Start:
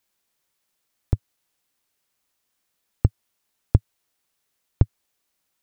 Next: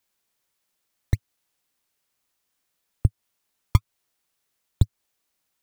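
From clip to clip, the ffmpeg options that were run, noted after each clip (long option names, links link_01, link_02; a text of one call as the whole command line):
ffmpeg -i in.wav -filter_complex "[0:a]acrossover=split=250[link_01][link_02];[link_01]acrusher=samples=22:mix=1:aa=0.000001:lfo=1:lforange=35.2:lforate=2.2[link_03];[link_02]alimiter=limit=-24dB:level=0:latency=1:release=210[link_04];[link_03][link_04]amix=inputs=2:normalize=0,volume=-1dB" out.wav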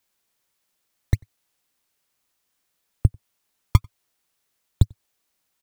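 ffmpeg -i in.wav -filter_complex "[0:a]asplit=2[link_01][link_02];[link_02]adelay=93.29,volume=-30dB,highshelf=frequency=4000:gain=-2.1[link_03];[link_01][link_03]amix=inputs=2:normalize=0,volume=2dB" out.wav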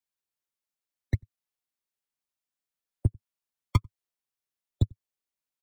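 ffmpeg -i in.wav -filter_complex "[0:a]afftdn=noise_reduction=15:noise_floor=-35,acrossover=split=100|770|1900[link_01][link_02][link_03][link_04];[link_01]asoftclip=type=hard:threshold=-19dB[link_05];[link_05][link_02][link_03][link_04]amix=inputs=4:normalize=0,volume=-3dB" out.wav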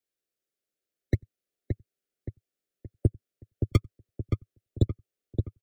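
ffmpeg -i in.wav -filter_complex "[0:a]asuperstop=centerf=950:order=4:qfactor=1.9,equalizer=frequency=410:width_type=o:width=1.3:gain=11,asplit=2[link_01][link_02];[link_02]adelay=572,lowpass=frequency=1400:poles=1,volume=-5dB,asplit=2[link_03][link_04];[link_04]adelay=572,lowpass=frequency=1400:poles=1,volume=0.45,asplit=2[link_05][link_06];[link_06]adelay=572,lowpass=frequency=1400:poles=1,volume=0.45,asplit=2[link_07][link_08];[link_08]adelay=572,lowpass=frequency=1400:poles=1,volume=0.45,asplit=2[link_09][link_10];[link_10]adelay=572,lowpass=frequency=1400:poles=1,volume=0.45,asplit=2[link_11][link_12];[link_12]adelay=572,lowpass=frequency=1400:poles=1,volume=0.45[link_13];[link_03][link_05][link_07][link_09][link_11][link_13]amix=inputs=6:normalize=0[link_14];[link_01][link_14]amix=inputs=2:normalize=0" out.wav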